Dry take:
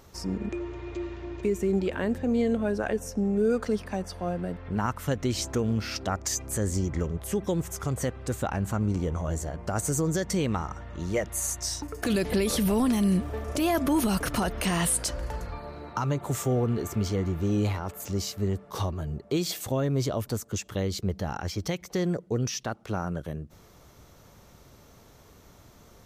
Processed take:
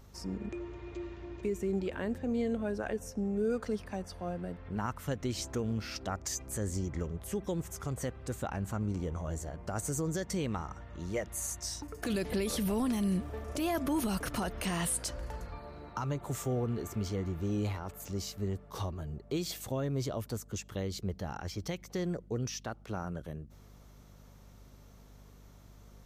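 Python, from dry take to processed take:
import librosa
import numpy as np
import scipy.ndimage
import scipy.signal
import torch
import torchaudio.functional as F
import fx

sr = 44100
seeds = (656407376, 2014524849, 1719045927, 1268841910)

y = fx.add_hum(x, sr, base_hz=50, snr_db=20)
y = y * 10.0 ** (-7.0 / 20.0)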